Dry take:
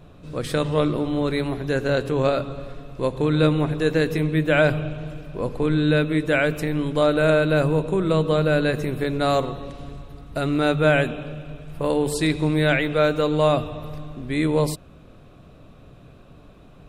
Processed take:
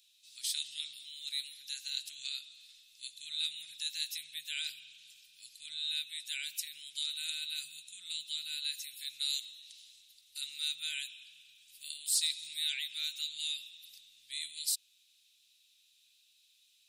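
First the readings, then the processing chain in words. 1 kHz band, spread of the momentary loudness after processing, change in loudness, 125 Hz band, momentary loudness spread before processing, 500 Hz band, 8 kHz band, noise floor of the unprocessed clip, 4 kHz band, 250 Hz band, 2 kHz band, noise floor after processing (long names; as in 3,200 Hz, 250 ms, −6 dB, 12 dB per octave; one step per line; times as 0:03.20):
below −40 dB, 18 LU, −15.0 dB, below −40 dB, 15 LU, below −40 dB, +2.5 dB, −47 dBFS, −0.5 dB, below −40 dB, −19.5 dB, −69 dBFS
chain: inverse Chebyshev high-pass filter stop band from 1,100 Hz, stop band 60 dB
soft clipping −19.5 dBFS, distortion −31 dB
level +3 dB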